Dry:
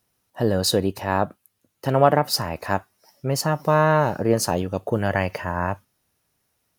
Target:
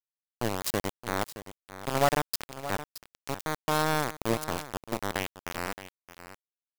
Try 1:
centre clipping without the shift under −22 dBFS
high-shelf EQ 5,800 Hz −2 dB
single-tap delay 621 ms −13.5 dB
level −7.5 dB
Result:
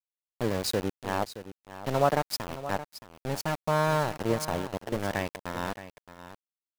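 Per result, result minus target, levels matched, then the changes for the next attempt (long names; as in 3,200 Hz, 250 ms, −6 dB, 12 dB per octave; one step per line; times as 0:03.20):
centre clipping without the shift: distortion −7 dB; 8,000 Hz band −3.0 dB
change: centre clipping without the shift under −14.5 dBFS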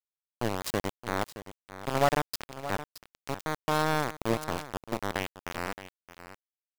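8,000 Hz band −3.5 dB
change: high-shelf EQ 5,800 Hz +4.5 dB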